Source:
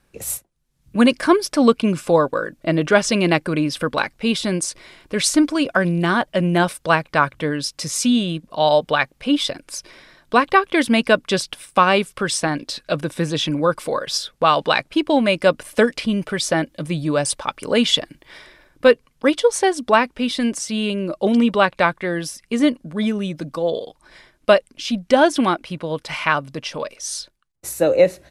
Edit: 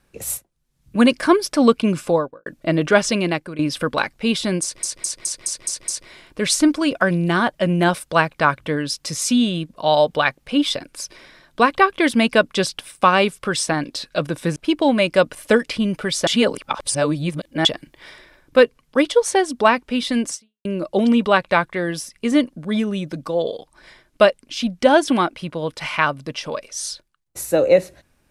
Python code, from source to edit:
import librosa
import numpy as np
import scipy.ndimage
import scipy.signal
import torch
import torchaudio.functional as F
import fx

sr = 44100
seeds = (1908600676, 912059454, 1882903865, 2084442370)

y = fx.studio_fade_out(x, sr, start_s=2.0, length_s=0.46)
y = fx.edit(y, sr, fx.fade_out_to(start_s=3.03, length_s=0.56, floor_db=-14.5),
    fx.stutter(start_s=4.62, slice_s=0.21, count=7),
    fx.cut(start_s=13.3, length_s=1.54),
    fx.reverse_span(start_s=16.55, length_s=1.38),
    fx.fade_out_span(start_s=20.62, length_s=0.31, curve='exp'), tone=tone)